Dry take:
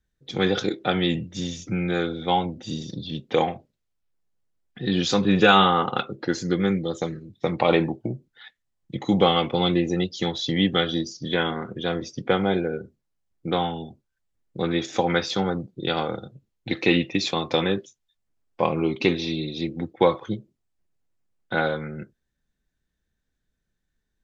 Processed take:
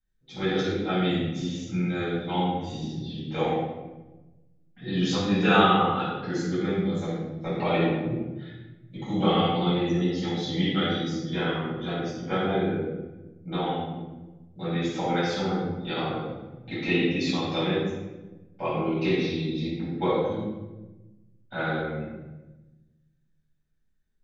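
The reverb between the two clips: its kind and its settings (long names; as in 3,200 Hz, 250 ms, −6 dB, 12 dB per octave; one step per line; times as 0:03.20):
rectangular room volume 590 cubic metres, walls mixed, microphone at 7.6 metres
level −18 dB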